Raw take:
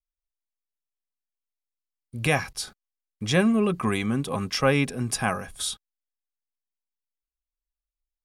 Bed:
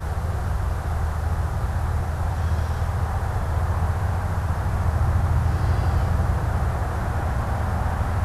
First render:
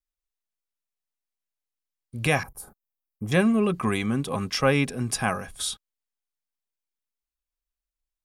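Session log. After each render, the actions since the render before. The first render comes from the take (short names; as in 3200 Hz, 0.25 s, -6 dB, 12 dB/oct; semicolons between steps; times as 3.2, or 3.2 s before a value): 2.43–3.32 EQ curve 950 Hz 0 dB, 1300 Hz -8 dB, 3600 Hz -28 dB, 5400 Hz -23 dB, 13000 Hz +6 dB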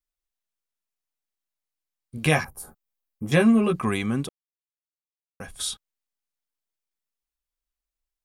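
2.16–3.76 doubler 13 ms -3 dB; 4.29–5.4 mute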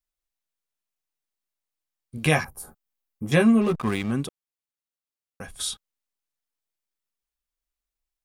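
3.61–4.12 backlash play -28.5 dBFS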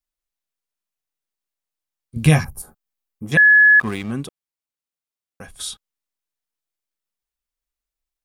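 2.16–2.62 tone controls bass +13 dB, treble +5 dB; 3.37–3.8 bleep 1700 Hz -7.5 dBFS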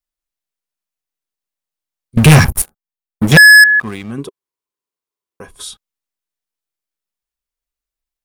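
2.17–3.64 sample leveller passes 5; 4.18–5.64 small resonant body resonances 400/1000 Hz, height 13 dB, ringing for 25 ms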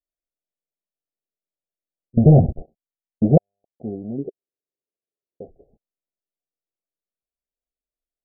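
steep low-pass 720 Hz 96 dB/oct; low shelf 160 Hz -9.5 dB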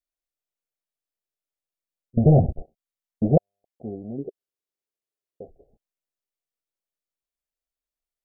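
bell 210 Hz -5 dB 2.5 oct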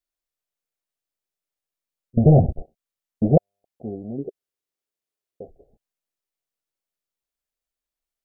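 gain +2 dB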